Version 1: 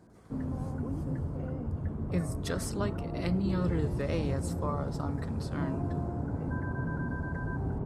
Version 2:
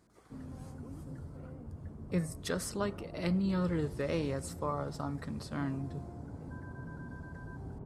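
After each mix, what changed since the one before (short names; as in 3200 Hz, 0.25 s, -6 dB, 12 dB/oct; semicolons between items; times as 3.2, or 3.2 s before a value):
background -11.0 dB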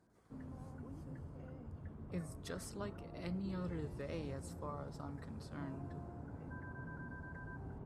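speech -11.0 dB; background: add tilt shelf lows -4.5 dB, about 1300 Hz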